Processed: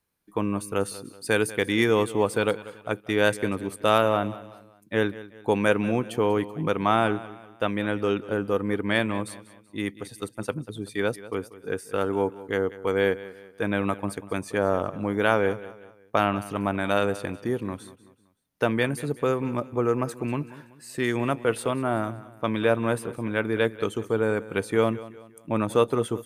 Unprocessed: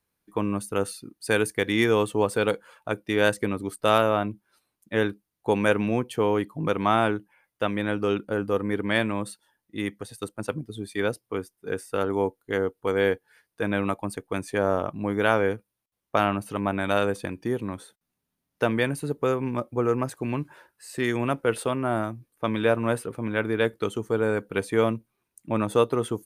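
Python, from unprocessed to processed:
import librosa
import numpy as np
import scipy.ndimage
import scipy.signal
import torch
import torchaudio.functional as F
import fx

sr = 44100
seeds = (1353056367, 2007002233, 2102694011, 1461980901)

y = fx.echo_feedback(x, sr, ms=190, feedback_pct=40, wet_db=-17.0)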